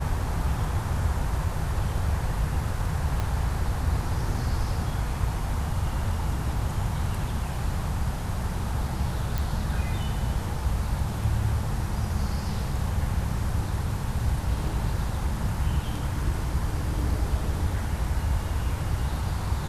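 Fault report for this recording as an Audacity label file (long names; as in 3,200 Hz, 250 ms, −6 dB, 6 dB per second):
3.200000	3.200000	click −16 dBFS
9.380000	9.380000	click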